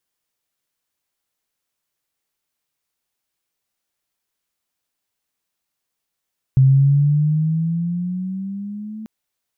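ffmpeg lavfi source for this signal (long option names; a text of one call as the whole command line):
ffmpeg -f lavfi -i "aevalsrc='pow(10,(-8-21*t/2.49)/20)*sin(2*PI*131*2.49/(9*log(2)/12)*(exp(9*log(2)/12*t/2.49)-1))':duration=2.49:sample_rate=44100" out.wav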